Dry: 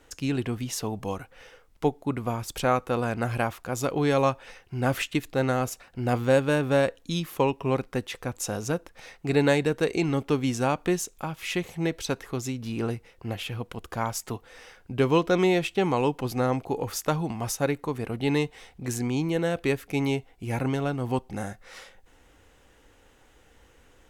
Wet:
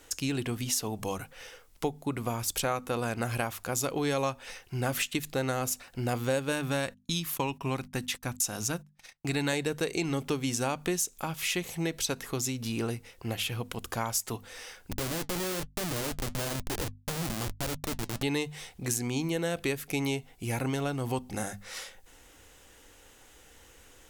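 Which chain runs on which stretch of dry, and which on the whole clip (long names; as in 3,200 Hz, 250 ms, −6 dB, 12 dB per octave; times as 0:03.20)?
0:06.52–0:09.53: parametric band 470 Hz −8.5 dB 0.64 octaves + noise gate −45 dBFS, range −32 dB
0:14.91–0:18.23: linear delta modulator 16 kbit/s, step −37 dBFS + comparator with hysteresis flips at −31 dBFS + flanger 1.1 Hz, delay 1 ms, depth 5.7 ms, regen −72%
whole clip: high-shelf EQ 3,700 Hz +12 dB; mains-hum notches 50/100/150/200/250 Hz; downward compressor 2.5 to 1, threshold −29 dBFS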